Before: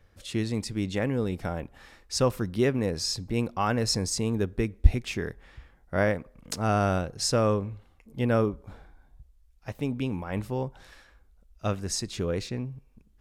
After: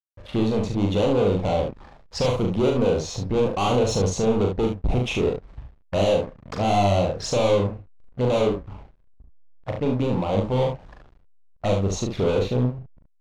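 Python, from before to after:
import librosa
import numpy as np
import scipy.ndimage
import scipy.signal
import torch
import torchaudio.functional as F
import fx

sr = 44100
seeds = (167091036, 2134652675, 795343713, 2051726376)

p1 = fx.env_lowpass(x, sr, base_hz=2200.0, full_db=-20.0)
p2 = fx.band_shelf(p1, sr, hz=770.0, db=10.5, octaves=1.7)
p3 = fx.rider(p2, sr, range_db=4, speed_s=2.0)
p4 = p2 + (p3 * librosa.db_to_amplitude(-2.0))
p5 = np.clip(10.0 ** (20.0 / 20.0) * p4, -1.0, 1.0) / 10.0 ** (20.0 / 20.0)
p6 = fx.env_flanger(p5, sr, rest_ms=2.6, full_db=-24.0)
p7 = fx.backlash(p6, sr, play_db=-36.0)
p8 = fx.air_absorb(p7, sr, metres=51.0)
p9 = fx.room_early_taps(p8, sr, ms=(40, 72), db=(-3.5, -6.5))
y = p9 * librosa.db_to_amplitude(2.0)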